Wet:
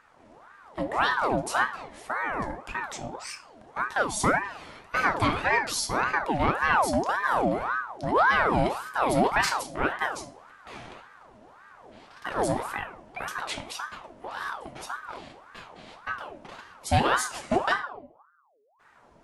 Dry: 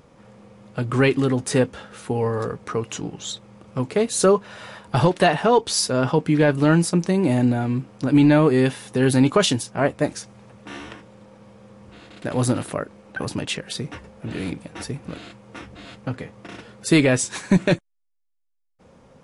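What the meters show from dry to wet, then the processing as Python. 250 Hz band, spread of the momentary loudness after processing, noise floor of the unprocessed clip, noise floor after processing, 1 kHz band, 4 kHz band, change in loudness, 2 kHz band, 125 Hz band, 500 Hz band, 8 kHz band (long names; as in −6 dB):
−13.0 dB, 20 LU, −70 dBFS, −58 dBFS, +2.5 dB, −6.5 dB, −6.0 dB, +2.0 dB, −13.0 dB, −9.0 dB, −7.5 dB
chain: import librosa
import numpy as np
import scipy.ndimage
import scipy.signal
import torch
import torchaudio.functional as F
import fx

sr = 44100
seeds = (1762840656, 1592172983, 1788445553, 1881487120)

y = fx.room_shoebox(x, sr, seeds[0], volume_m3=67.0, walls='mixed', distance_m=0.38)
y = 10.0 ** (-5.0 / 20.0) * np.tanh(y / 10.0 ** (-5.0 / 20.0))
y = fx.ring_lfo(y, sr, carrier_hz=910.0, swing_pct=55, hz=1.8)
y = F.gain(torch.from_numpy(y), -5.0).numpy()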